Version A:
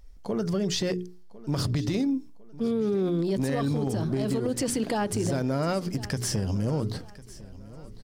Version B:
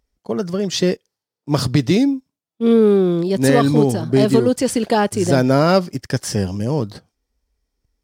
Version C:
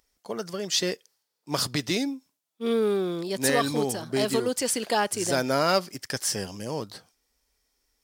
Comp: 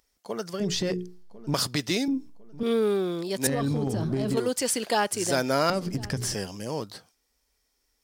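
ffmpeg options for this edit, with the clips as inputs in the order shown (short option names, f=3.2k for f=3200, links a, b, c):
-filter_complex "[0:a]asplit=4[a][b][c][d];[2:a]asplit=5[e][f][g][h][i];[e]atrim=end=0.602[j];[a]atrim=start=0.598:end=1.542[k];[f]atrim=start=1.538:end=2.082[l];[b]atrim=start=2.078:end=2.632[m];[g]atrim=start=2.628:end=3.472[n];[c]atrim=start=3.468:end=4.372[o];[h]atrim=start=4.368:end=5.702[p];[d]atrim=start=5.698:end=6.342[q];[i]atrim=start=6.338[r];[j][k]acrossfade=d=0.004:c1=hsin:c2=hsin[s];[s][l]acrossfade=d=0.004:c1=hsin:c2=hsin[t];[t][m]acrossfade=d=0.004:c1=hsin:c2=hsin[u];[u][n]acrossfade=d=0.004:c1=hsin:c2=hsin[v];[v][o]acrossfade=d=0.004:c1=hsin:c2=hsin[w];[w][p]acrossfade=d=0.004:c1=hsin:c2=hsin[x];[x][q]acrossfade=d=0.004:c1=hsin:c2=hsin[y];[y][r]acrossfade=d=0.004:c1=hsin:c2=hsin"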